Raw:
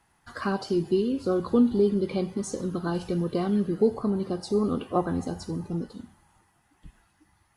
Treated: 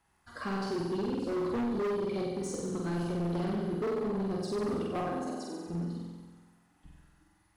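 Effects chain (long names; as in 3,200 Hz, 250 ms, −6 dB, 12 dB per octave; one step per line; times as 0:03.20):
0:05.08–0:05.67: high-pass filter 270 Hz 24 dB per octave
flutter between parallel walls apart 8 metres, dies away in 1.3 s
gain into a clipping stage and back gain 21.5 dB
level −7.5 dB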